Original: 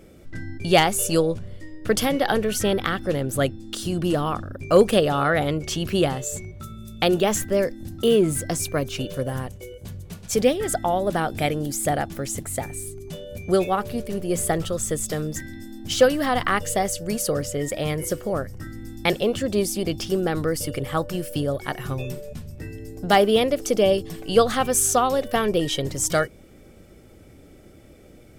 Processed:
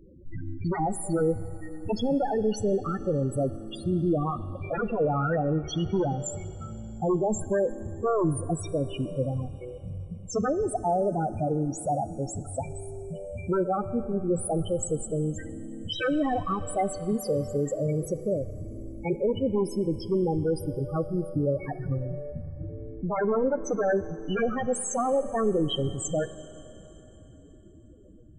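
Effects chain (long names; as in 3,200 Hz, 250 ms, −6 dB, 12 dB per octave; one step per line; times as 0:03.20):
wave folding −17.5 dBFS
spectral peaks only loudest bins 8
four-comb reverb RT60 3.8 s, combs from 29 ms, DRR 14.5 dB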